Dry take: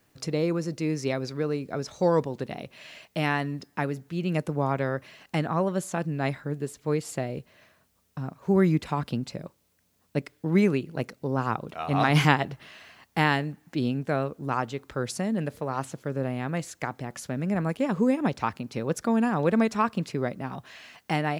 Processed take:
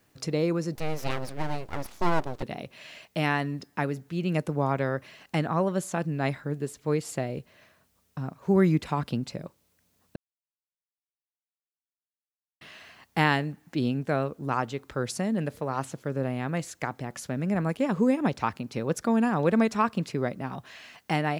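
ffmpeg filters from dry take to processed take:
-filter_complex "[0:a]asettb=1/sr,asplit=3[s0][s1][s2];[s0]atrim=end=0.754[s3];[s1]atrim=start=0.75:end=2.43,asetpts=PTS-STARTPTS,afade=t=in:d=0.004:c=qsin,afade=t=out:st=1.676:d=0.004:c=qsin,aeval=exprs='abs(val(0))':c=same[s4];[s2]atrim=start=2.426[s5];[s3][s4]acrossfade=d=0.004:c1=hsin:c2=qsin[s6];[s6][s5]acrossfade=d=0.004:c1=qsin:c2=hsin,asplit=3[s7][s8][s9];[s7]atrim=end=10.16,asetpts=PTS-STARTPTS,afade=t=out:st=10.156:d=0.004:c=hsin[s10];[s8]atrim=start=10.16:end=12.61,asetpts=PTS-STARTPTS,volume=0[s11];[s9]atrim=start=12.61,asetpts=PTS-STARTPTS,afade=t=in:d=0.004:c=hsin[s12];[s10][s11][s12]concat=n=3:v=0:a=1"

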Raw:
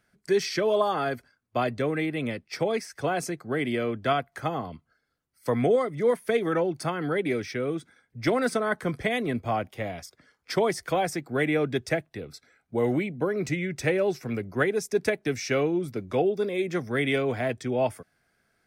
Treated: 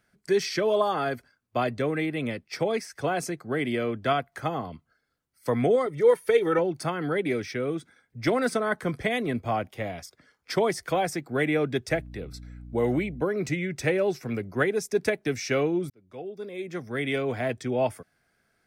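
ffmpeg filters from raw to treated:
-filter_complex "[0:a]asettb=1/sr,asplit=3[s0][s1][s2];[s0]atrim=end=5.864[s3];[s1]atrim=start=5.86:end=6.59,asetpts=PTS-STARTPTS,afade=t=in:d=0.004:c=qsin,afade=t=out:st=0.726:d=0.004:c=qsin,aecho=1:1:2.2:0.65,atrim=end_sample=32193[s4];[s2]atrim=start=6.586[s5];[s3][s4]acrossfade=d=0.004:c1=hsin:c2=qsin[s6];[s6][s5]acrossfade=d=0.004:c1=qsin:c2=hsin,asettb=1/sr,asplit=3[s7][s8][s9];[s7]atrim=end=11.904[s10];[s8]atrim=start=11.9:end=13.23,asetpts=PTS-STARTPTS,afade=t=in:d=0.004:c=qsin,afade=t=out:st=1.326:d=0.004:c=qsin,aeval=exprs='val(0)+0.00891*(sin(2*PI*60*n/s)+sin(2*PI*2*60*n/s)/2+sin(2*PI*3*60*n/s)/3+sin(2*PI*4*60*n/s)/4+sin(2*PI*5*60*n/s)/5)':c=same[s11];[s9]atrim=start=13.226[s12];[s10][s11]acrossfade=d=0.004:c1=hsin:c2=qsin[s13];[s13][s12]acrossfade=d=0.004:c1=qsin:c2=hsin,asplit=2[s14][s15];[s14]atrim=end=15.9,asetpts=PTS-STARTPTS,afade=t=out:st=15.896:d=0.004:c=hsin[s16];[s15]atrim=start=15.9,asetpts=PTS-STARTPTS,afade=t=in:d=1.64[s17];[s16][s17]concat=n=2:v=0:a=1"

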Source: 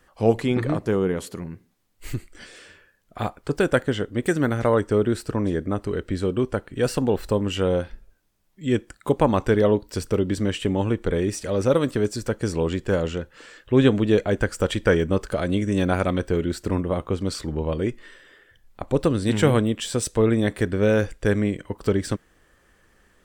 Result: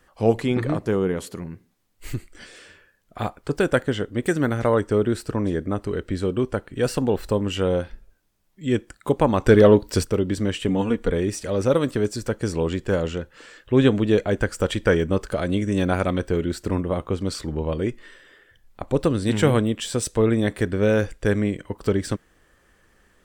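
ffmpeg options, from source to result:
-filter_complex "[0:a]asplit=3[s0][s1][s2];[s0]afade=t=out:st=9.45:d=0.02[s3];[s1]acontrast=70,afade=t=in:st=9.45:d=0.02,afade=t=out:st=10.03:d=0.02[s4];[s2]afade=t=in:st=10.03:d=0.02[s5];[s3][s4][s5]amix=inputs=3:normalize=0,asettb=1/sr,asplit=3[s6][s7][s8];[s6]atrim=end=10.684[s9];[s7]atrim=start=10.68:end=11.1,asetpts=PTS-STARTPTS,afade=t=in:d=0.004:c=qsin,afade=t=out:st=0.416:d=0.004:c=qsin,aecho=1:1:4.2:0.65,atrim=end_sample=18522[s10];[s8]atrim=start=11.096[s11];[s9][s10]acrossfade=d=0.004:c1=hsin:c2=qsin[s12];[s12][s11]acrossfade=d=0.004:c1=qsin:c2=hsin"

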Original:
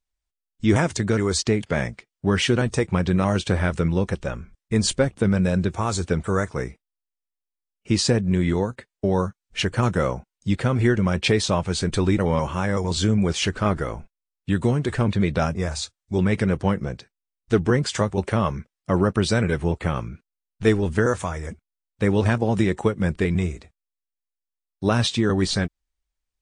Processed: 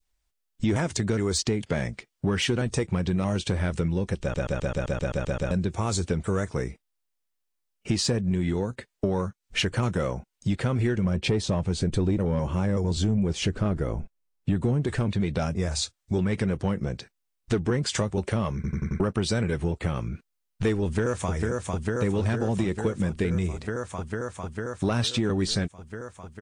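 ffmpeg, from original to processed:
-filter_complex "[0:a]asettb=1/sr,asplit=3[s0][s1][s2];[s0]atrim=end=11.044[s3];[s1]atrim=start=11.04:end=14.87,asetpts=PTS-STARTPTS,afade=t=in:d=0.004:c=qsin,afade=t=out:st=3.826:d=0.004:c=qsin,tiltshelf=f=930:g=4.5[s4];[s2]atrim=start=14.866[s5];[s3][s4]acrossfade=d=0.004:c1=hsin:c2=qsin[s6];[s6][s5]acrossfade=d=0.004:c1=qsin:c2=hsin,asplit=2[s7][s8];[s8]afade=t=in:st=20.83:d=0.01,afade=t=out:st=21.32:d=0.01,aecho=0:1:450|900|1350|1800|2250|2700|3150|3600|4050|4500|4950|5400:0.530884|0.424708|0.339766|0.271813|0.21745|0.17396|0.139168|0.111335|0.0890676|0.0712541|0.0570033|0.0456026[s9];[s7][s9]amix=inputs=2:normalize=0,asplit=16[s10][s11][s12][s13][s14][s15][s16][s17][s18][s19][s20][s21][s22][s23][s24][s25];[s10]atrim=end=4.342[s26];[s11]atrim=start=4.208:end=4.342[s27];[s12]atrim=start=4.208:end=4.342[s28];[s13]atrim=start=4.208:end=4.342[s29];[s14]atrim=start=4.208:end=4.342[s30];[s15]atrim=start=4.208:end=4.342[s31];[s16]atrim=start=4.208:end=4.342[s32];[s17]atrim=start=4.208:end=4.342[s33];[s18]atrim=start=4.208:end=4.342[s34];[s19]atrim=start=4.208:end=4.342[s35];[s20]atrim=start=5.508:end=18.642[s36];[s21]atrim=start=18.548:end=18.642[s37];[s22]atrim=start=18.548:end=18.642[s38];[s23]atrim=start=18.548:end=18.642[s39];[s24]atrim=start=18.548:end=18.642[s40];[s25]atrim=start=18.998[s41];[s26][s27]acrossfade=d=0.004:c1=hsin:c2=hsin[s42];[s42][s28]acrossfade=d=0.004:c1=hsin:c2=hsin[s43];[s43][s29]acrossfade=d=0.004:c1=hsin:c2=hsin[s44];[s44][s30]acrossfade=d=0.004:c1=hsin:c2=hsin[s45];[s45][s31]acrossfade=d=0.004:c1=hsin:c2=hsin[s46];[s46][s32]acrossfade=d=0.004:c1=hsin:c2=hsin[s47];[s47][s33]acrossfade=d=0.004:c1=hsin:c2=hsin[s48];[s48][s34]acrossfade=d=0.004:c1=hsin:c2=hsin[s49];[s49][s35]acrossfade=d=0.004:c1=hsin:c2=hsin[s50];[s50][s36]acrossfade=d=0.004:c1=hsin:c2=hsin[s51];[s51][s37]acrossfade=d=0.004:c1=hsin:c2=hsin[s52];[s52][s38]acrossfade=d=0.004:c1=hsin:c2=hsin[s53];[s53][s39]acrossfade=d=0.004:c1=hsin:c2=hsin[s54];[s54][s40]acrossfade=d=0.004:c1=hsin:c2=hsin[s55];[s55][s41]acrossfade=d=0.004:c1=hsin:c2=hsin,acontrast=90,adynamicequalizer=threshold=0.0224:dfrequency=1200:dqfactor=0.78:tfrequency=1200:tqfactor=0.78:attack=5:release=100:ratio=0.375:range=2.5:mode=cutabove:tftype=bell,acompressor=threshold=0.0501:ratio=3"

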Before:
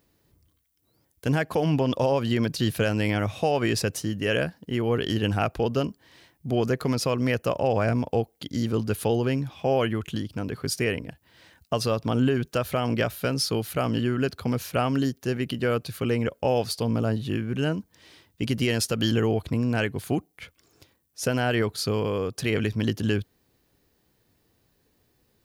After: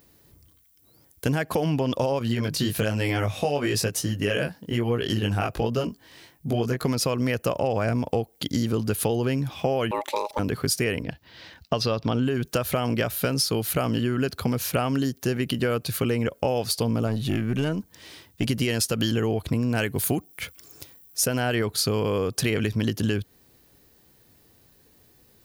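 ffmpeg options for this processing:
-filter_complex "[0:a]asettb=1/sr,asplit=3[s0][s1][s2];[s0]atrim=end=2.194[s3];[s1]atrim=start=2.19:end=6.84,asetpts=PTS-STARTPTS,afade=t=in:d=0.004:c=qsin,afade=t=out:st=4.646:d=0.004:c=qsin,flanger=delay=16.5:depth=4.6:speed=1.1[s4];[s2]atrim=start=6.836[s5];[s3][s4]acrossfade=d=0.004:c1=hsin:c2=qsin[s6];[s6][s5]acrossfade=d=0.004:c1=qsin:c2=hsin,asettb=1/sr,asplit=3[s7][s8][s9];[s7]atrim=end=9.914[s10];[s8]atrim=start=9.91:end=10.39,asetpts=PTS-STARTPTS,afade=t=in:d=0.004:c=qsin,afade=t=out:st=0.476:d=0.004:c=qsin,aeval=exprs='val(0)*sin(2*PI*720*n/s)':c=same[s11];[s9]atrim=start=10.386[s12];[s10][s11]acrossfade=d=0.004:c1=hsin:c2=qsin[s13];[s13][s12]acrossfade=d=0.004:c1=qsin:c2=hsin,asettb=1/sr,asplit=3[s14][s15][s16];[s14]atrim=end=11.034[s17];[s15]atrim=start=11.03:end=12.23,asetpts=PTS-STARTPTS,afade=t=in:d=0.004:c=qsin,afade=t=out:st=1.196:d=0.004:c=qsin,highshelf=f=6400:t=q:w=1.5:g=-11[s18];[s16]atrim=start=12.226[s19];[s17][s18]acrossfade=d=0.004:c1=hsin:c2=qsin[s20];[s20][s19]acrossfade=d=0.004:c1=qsin:c2=hsin,asettb=1/sr,asplit=3[s21][s22][s23];[s21]atrim=end=17.074[s24];[s22]atrim=start=17.07:end=18.49,asetpts=PTS-STARTPTS,afade=t=in:d=0.004:c=qsin,afade=t=out:st=1.416:d=0.004:c=qsin,aeval=exprs='(tanh(8.91*val(0)+0.3)-tanh(0.3))/8.91':c=same[s25];[s23]atrim=start=18.486[s26];[s24][s25]acrossfade=d=0.004:c1=hsin:c2=qsin[s27];[s27][s26]acrossfade=d=0.004:c1=qsin:c2=hsin,asettb=1/sr,asplit=3[s28][s29][s30];[s28]atrim=end=19.764[s31];[s29]atrim=start=19.76:end=21.26,asetpts=PTS-STARTPTS,afade=t=in:d=0.004:c=qsin,afade=t=out:st=1.496:d=0.004:c=qsin,highshelf=f=9100:g=10.5[s32];[s30]atrim=start=21.256[s33];[s31][s32]acrossfade=d=0.004:c1=hsin:c2=qsin[s34];[s34][s33]acrossfade=d=0.004:c1=qsin:c2=hsin,highshelf=f=7600:g=7,acompressor=threshold=0.0398:ratio=6,volume=2.24"

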